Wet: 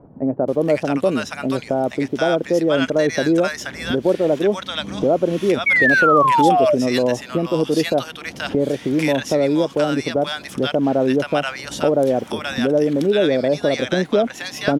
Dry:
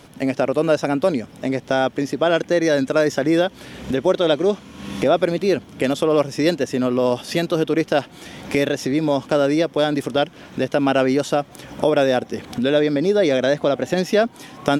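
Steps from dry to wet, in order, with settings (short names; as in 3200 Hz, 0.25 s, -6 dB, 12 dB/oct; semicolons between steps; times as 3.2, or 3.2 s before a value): bands offset in time lows, highs 0.48 s, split 940 Hz; painted sound fall, 5.66–6.75, 570–2300 Hz -16 dBFS; gain +1 dB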